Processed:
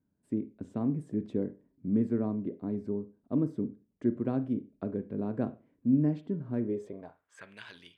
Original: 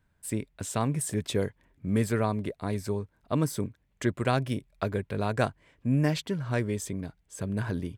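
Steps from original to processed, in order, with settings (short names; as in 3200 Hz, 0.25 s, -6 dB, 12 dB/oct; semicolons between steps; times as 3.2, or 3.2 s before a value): on a send at -12 dB: reverb, pre-delay 34 ms; on the sum: band-pass sweep 260 Hz -> 3200 Hz, 6.62–7.64; gain +3.5 dB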